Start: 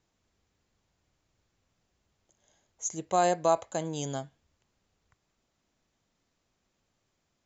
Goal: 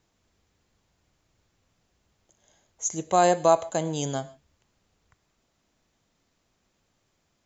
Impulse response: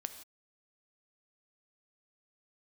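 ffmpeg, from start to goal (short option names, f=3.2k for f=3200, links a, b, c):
-filter_complex "[0:a]asplit=2[a][b];[1:a]atrim=start_sample=2205,atrim=end_sample=6615[c];[b][c]afir=irnorm=-1:irlink=0,volume=0dB[d];[a][d]amix=inputs=2:normalize=0"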